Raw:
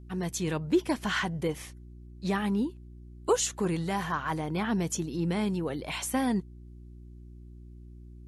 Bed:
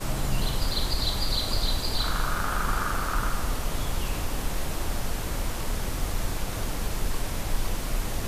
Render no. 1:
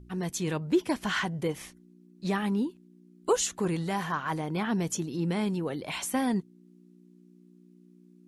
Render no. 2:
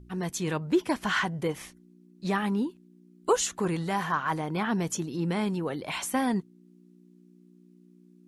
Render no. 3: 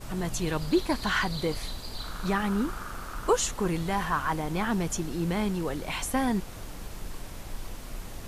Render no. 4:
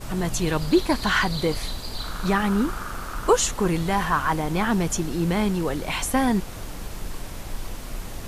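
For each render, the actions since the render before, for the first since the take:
de-hum 60 Hz, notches 2
dynamic EQ 1200 Hz, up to +4 dB, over -44 dBFS, Q 0.86
add bed -10.5 dB
gain +5.5 dB

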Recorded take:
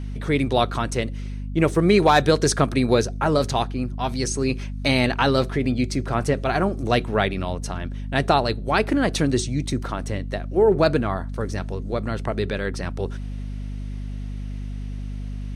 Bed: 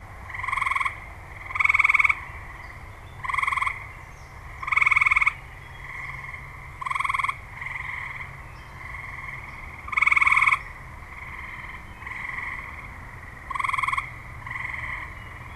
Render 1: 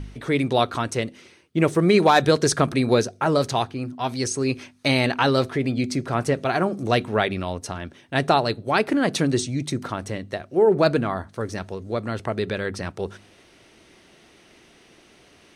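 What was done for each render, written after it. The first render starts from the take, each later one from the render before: de-hum 50 Hz, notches 5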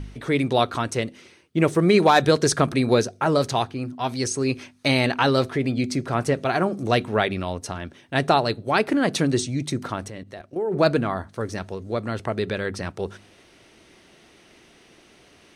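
10.08–10.75 level quantiser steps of 12 dB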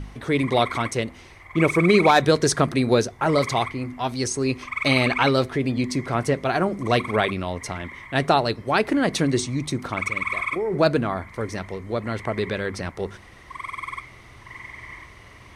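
add bed -8 dB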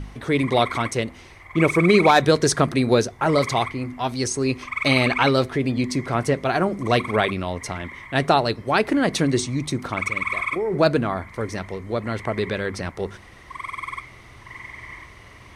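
gain +1 dB

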